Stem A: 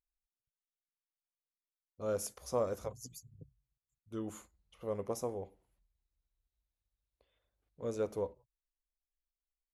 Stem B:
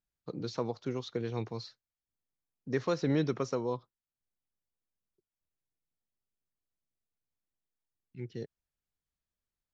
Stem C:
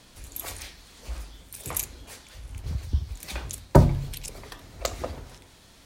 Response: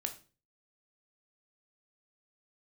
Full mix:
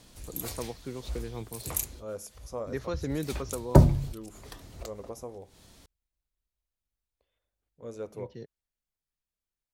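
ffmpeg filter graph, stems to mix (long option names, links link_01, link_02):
-filter_complex "[0:a]volume=-3.5dB,asplit=2[link_01][link_02];[1:a]volume=-3.5dB[link_03];[2:a]equalizer=frequency=1800:width_type=o:width=2.7:gain=-5.5,volume=-0.5dB[link_04];[link_02]apad=whole_len=258346[link_05];[link_04][link_05]sidechaincompress=threshold=-57dB:ratio=5:attack=7.5:release=141[link_06];[link_01][link_03][link_06]amix=inputs=3:normalize=0"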